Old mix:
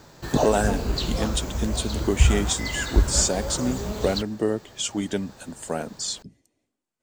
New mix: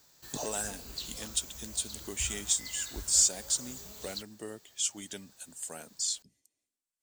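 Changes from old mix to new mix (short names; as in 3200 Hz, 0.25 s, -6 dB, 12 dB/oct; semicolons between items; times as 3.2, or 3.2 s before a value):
background -4.5 dB; master: add pre-emphasis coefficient 0.9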